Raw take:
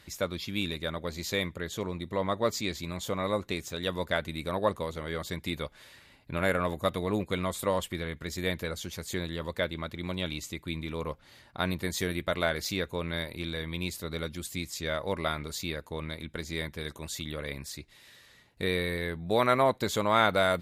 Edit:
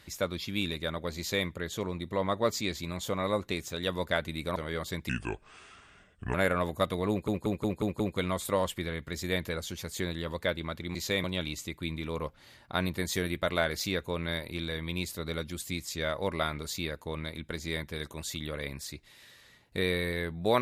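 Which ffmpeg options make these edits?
-filter_complex "[0:a]asplit=11[a][b][c][d][e][f][g][h][i][j][k];[a]atrim=end=4.562[l];[b]atrim=start=4.948:end=5.484[m];[c]atrim=start=5.48:end=6.38,asetpts=PTS-STARTPTS,asetrate=31752,aresample=44100[n];[d]atrim=start=6.376:end=7.322[o];[e]atrim=start=7.138:end=7.322[p];[f]atrim=start=7.138:end=7.322[q];[g]atrim=start=7.138:end=7.322[r];[h]atrim=start=7.138:end=7.322[s];[i]atrim=start=7.138:end=10.092[t];[j]atrim=start=1.178:end=1.472[u];[k]atrim=start=10.088[v];[l][m]acrossfade=d=0.004:c1=hsin:c2=hsin[w];[w][n]acrossfade=d=0.004:c1=hsin:c2=hsin[x];[x][o]acrossfade=d=0.004:c1=hsin:c2=hsin[y];[y][p]acrossfade=d=0.004:c1=hsin:c2=hsin[z];[z][q]acrossfade=d=0.004:c1=hsin:c2=hsin[aa];[aa][r]acrossfade=d=0.004:c1=hsin:c2=hsin[ab];[ab][s]acrossfade=d=0.004:c1=hsin:c2=hsin[ac];[ac][t]acrossfade=d=0.004:c1=hsin:c2=hsin[ad];[ad][u]acrossfade=d=0.004:c1=hsin:c2=hsin[ae];[ae][v]acrossfade=d=0.004:c1=hsin:c2=hsin"

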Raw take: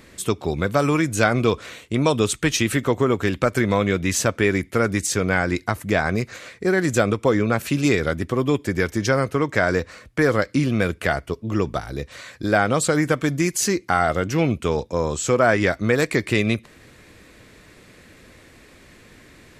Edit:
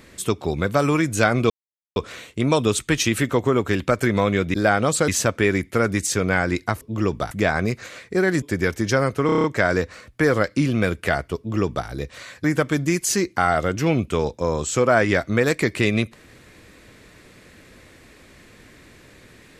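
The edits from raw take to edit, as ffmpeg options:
-filter_complex "[0:a]asplit=14[a][b][c][d][e][f][g][h][i][j][k][l][m][n];[a]atrim=end=1.5,asetpts=PTS-STARTPTS,afade=t=out:st=1.496:d=0.004:c=hsin,apad=pad_dur=0.46[o];[b]atrim=start=1.5:end=4.082,asetpts=PTS-STARTPTS,afade=t=in:d=0.004:c=hsin[p];[c]atrim=start=12.418:end=12.962[q];[d]atrim=start=4.078:end=5.812[r];[e]atrim=start=11.348:end=11.852[s];[f]atrim=start=5.808:end=6.922[t];[g]atrim=start=8.578:end=9.452[u];[h]atrim=start=9.418:end=9.452[v];[i]atrim=start=9.418:end=9.452[w];[j]atrim=start=9.418:end=9.452[x];[k]atrim=start=9.418:end=9.452[y];[l]atrim=start=9.418:end=9.452[z];[m]atrim=start=9.418:end=12.422[aa];[n]atrim=start=12.958[ab];[o][p]concat=n=2:v=0:a=1[ac];[ac][q]acrossfade=d=0.004:c1=hsin:c2=hsin[ad];[ad][r]acrossfade=d=0.004:c1=hsin:c2=hsin[ae];[ae][s]acrossfade=d=0.004:c1=hsin:c2=hsin[af];[af][t]acrossfade=d=0.004:c1=hsin:c2=hsin[ag];[ag][u]acrossfade=d=0.004:c1=hsin:c2=hsin[ah];[ah][v]acrossfade=d=0.004:c1=hsin:c2=hsin[ai];[ai][w]acrossfade=d=0.004:c1=hsin:c2=hsin[aj];[aj][x]acrossfade=d=0.004:c1=hsin:c2=hsin[ak];[ak][y]acrossfade=d=0.004:c1=hsin:c2=hsin[al];[al][z]acrossfade=d=0.004:c1=hsin:c2=hsin[am];[am][aa]acrossfade=d=0.004:c1=hsin:c2=hsin[an];[an][ab]acrossfade=d=0.004:c1=hsin:c2=hsin"

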